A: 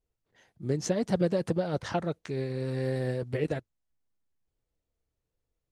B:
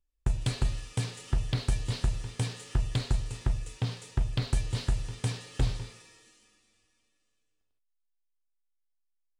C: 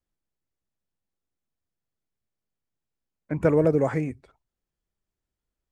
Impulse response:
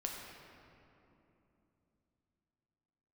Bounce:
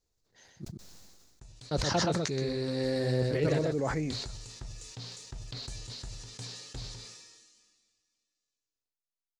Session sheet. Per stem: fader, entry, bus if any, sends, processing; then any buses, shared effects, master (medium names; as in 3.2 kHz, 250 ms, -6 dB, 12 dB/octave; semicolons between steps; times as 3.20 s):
-0.5 dB, 0.00 s, muted 0.65–1.71 s, no send, echo send -4 dB, none
3.60 s -22.5 dB -> 4.30 s -12.5 dB, 1.15 s, no send, no echo send, bass shelf 120 Hz -6 dB
-2.0 dB, 0.00 s, no send, no echo send, auto duck -11 dB, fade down 1.95 s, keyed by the first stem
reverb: none
echo: delay 126 ms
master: high-order bell 5.3 kHz +10.5 dB 1.1 oct; decay stretcher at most 34 dB/s